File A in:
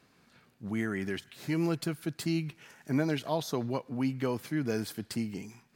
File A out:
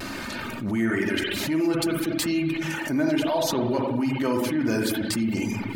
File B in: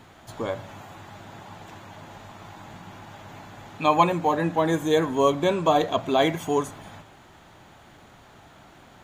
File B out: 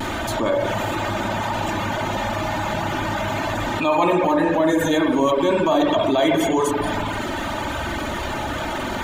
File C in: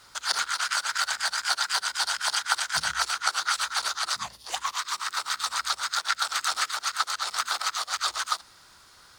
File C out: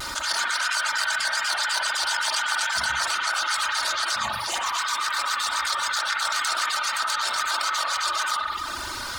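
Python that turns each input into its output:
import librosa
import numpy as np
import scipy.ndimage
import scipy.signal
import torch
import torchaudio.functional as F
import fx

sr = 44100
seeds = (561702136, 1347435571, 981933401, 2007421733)

y = x + 0.58 * np.pad(x, (int(3.3 * sr / 1000.0), 0))[:len(x)]
y = fx.transient(y, sr, attack_db=-6, sustain_db=0)
y = fx.rev_spring(y, sr, rt60_s=1.1, pass_ms=(44, 58), chirp_ms=45, drr_db=0.0)
y = fx.dereverb_blind(y, sr, rt60_s=0.52)
y = fx.vibrato(y, sr, rate_hz=0.32, depth_cents=12.0)
y = fx.env_flatten(y, sr, amount_pct=70)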